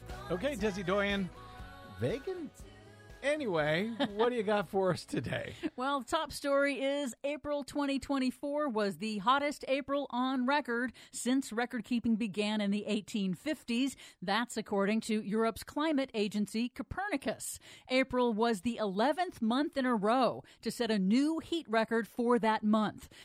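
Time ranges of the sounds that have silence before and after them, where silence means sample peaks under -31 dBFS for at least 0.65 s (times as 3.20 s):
2.02–2.31 s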